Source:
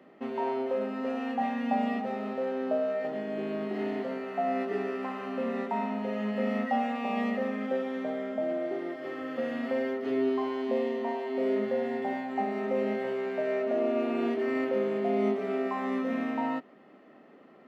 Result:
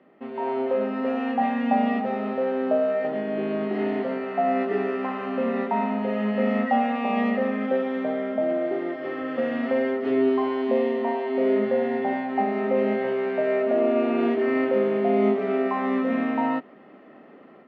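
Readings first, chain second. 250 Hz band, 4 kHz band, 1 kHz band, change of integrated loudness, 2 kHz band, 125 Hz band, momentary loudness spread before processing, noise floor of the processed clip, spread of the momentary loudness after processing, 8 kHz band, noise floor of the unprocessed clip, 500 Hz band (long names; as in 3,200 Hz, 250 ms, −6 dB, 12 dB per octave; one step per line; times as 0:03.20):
+6.5 dB, +4.0 dB, +6.5 dB, +6.5 dB, +6.0 dB, +6.5 dB, 5 LU, −49 dBFS, 5 LU, can't be measured, −55 dBFS, +6.5 dB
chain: automatic gain control gain up to 8 dB
low-pass filter 3,300 Hz 12 dB per octave
level −1.5 dB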